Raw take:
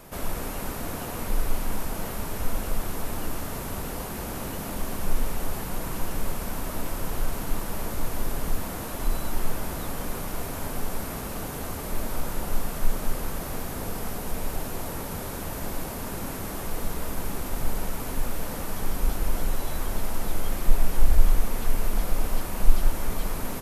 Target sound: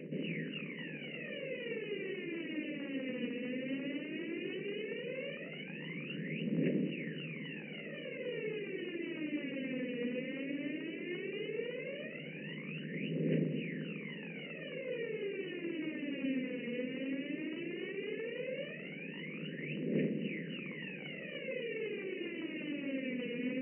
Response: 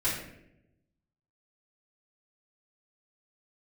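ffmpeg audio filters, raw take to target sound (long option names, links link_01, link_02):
-filter_complex "[0:a]asuperstop=centerf=1000:order=12:qfactor=0.75,aemphasis=mode=production:type=50fm,bandreject=frequency=60:width_type=h:width=6,bandreject=frequency=120:width_type=h:width=6,bandreject=frequency=180:width_type=h:width=6,bandreject=frequency=240:width_type=h:width=6,aphaser=in_gain=1:out_gain=1:delay=4.2:decay=0.79:speed=0.15:type=triangular,asplit=2[link_01][link_02];[1:a]atrim=start_sample=2205,asetrate=79380,aresample=44100,highshelf=frequency=7700:gain=3.5[link_03];[link_02][link_03]afir=irnorm=-1:irlink=0,volume=-20dB[link_04];[link_01][link_04]amix=inputs=2:normalize=0,afftfilt=real='re*between(b*sr/4096,150,3000)':imag='im*between(b*sr/4096,150,3000)':win_size=4096:overlap=0.75,volume=-4.5dB"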